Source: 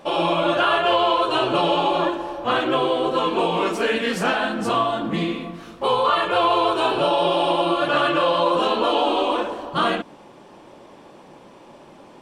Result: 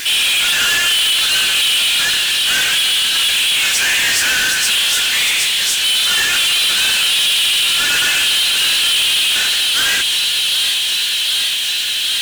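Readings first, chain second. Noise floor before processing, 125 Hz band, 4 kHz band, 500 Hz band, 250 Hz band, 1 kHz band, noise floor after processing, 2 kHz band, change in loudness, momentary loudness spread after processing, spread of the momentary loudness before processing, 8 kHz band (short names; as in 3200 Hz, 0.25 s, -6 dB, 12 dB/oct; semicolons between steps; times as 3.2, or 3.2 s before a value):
-46 dBFS, n/a, +17.5 dB, -17.0 dB, -14.5 dB, -9.5 dB, -18 dBFS, +12.5 dB, +8.5 dB, 2 LU, 6 LU, +29.0 dB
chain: steep high-pass 1500 Hz 96 dB/oct; vibrato 0.36 Hz 9.1 cents; on a send: thin delay 0.762 s, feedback 70%, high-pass 4900 Hz, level -3 dB; on the sum: overdrive pedal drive 35 dB, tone 7300 Hz, clips at -12.5 dBFS; requantised 6-bit, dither triangular; bell 8400 Hz +8 dB 2.7 oct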